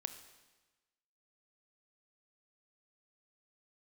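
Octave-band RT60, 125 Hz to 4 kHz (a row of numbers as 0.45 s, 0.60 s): 1.3 s, 1.2 s, 1.2 s, 1.2 s, 1.2 s, 1.2 s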